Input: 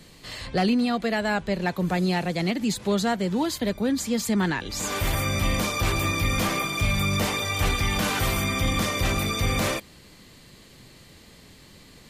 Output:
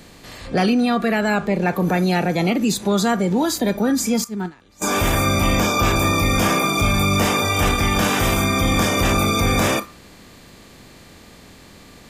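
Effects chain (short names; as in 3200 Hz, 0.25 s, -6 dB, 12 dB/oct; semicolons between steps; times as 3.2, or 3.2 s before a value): per-bin compression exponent 0.6; 4.24–4.82 gate -18 dBFS, range -18 dB; spectral noise reduction 15 dB; 5.54–5.96 bell 9700 Hz -12.5 dB 0.22 oct; in parallel at +2 dB: limiter -19 dBFS, peak gain reduction 10 dB; 7.65–8.69 on the sum: transient shaper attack -1 dB, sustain -8 dB; on a send at -5.5 dB: ladder high-pass 1100 Hz, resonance 80% + reverb RT60 0.40 s, pre-delay 4 ms; on the sum: gain -1.5 dB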